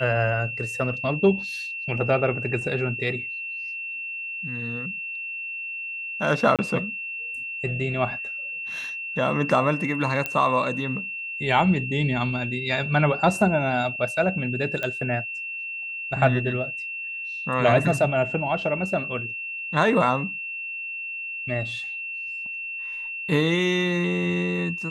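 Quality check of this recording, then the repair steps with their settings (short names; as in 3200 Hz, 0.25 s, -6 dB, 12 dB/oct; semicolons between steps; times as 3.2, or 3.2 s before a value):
tone 2700 Hz -30 dBFS
6.56–6.59 gap 27 ms
10.26 pop -11 dBFS
14.83 pop -15 dBFS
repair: de-click; notch 2700 Hz, Q 30; interpolate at 6.56, 27 ms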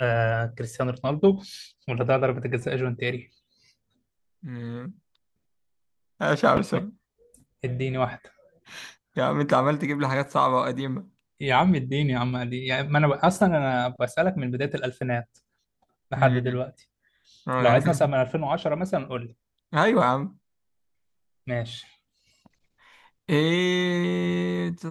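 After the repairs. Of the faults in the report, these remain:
10.26 pop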